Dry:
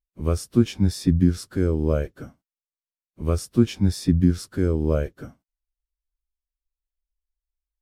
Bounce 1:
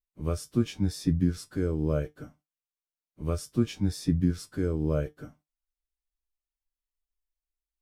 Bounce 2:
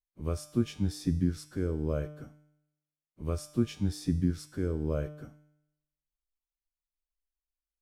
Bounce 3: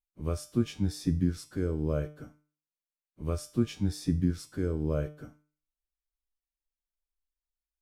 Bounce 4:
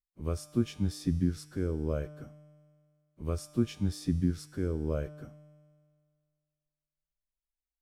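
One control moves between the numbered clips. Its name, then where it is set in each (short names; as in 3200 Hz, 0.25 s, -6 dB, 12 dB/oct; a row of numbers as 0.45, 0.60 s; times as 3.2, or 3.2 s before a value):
resonator, decay: 0.15, 0.85, 0.41, 2 s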